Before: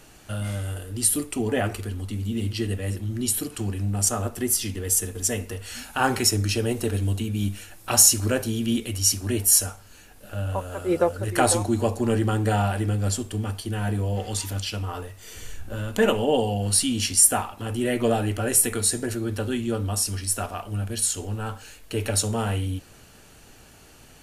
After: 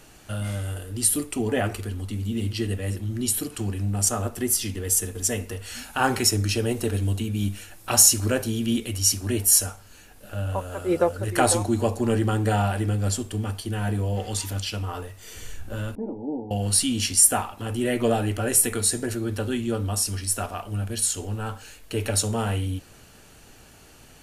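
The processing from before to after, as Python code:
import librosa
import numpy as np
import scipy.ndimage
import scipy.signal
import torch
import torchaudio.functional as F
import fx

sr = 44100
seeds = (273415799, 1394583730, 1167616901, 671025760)

y = fx.formant_cascade(x, sr, vowel='u', at=(15.95, 16.51))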